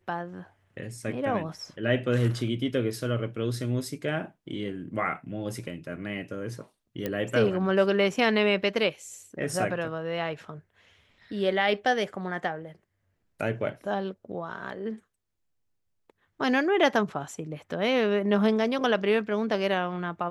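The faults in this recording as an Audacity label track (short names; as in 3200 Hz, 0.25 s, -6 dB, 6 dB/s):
7.060000	7.060000	pop -16 dBFS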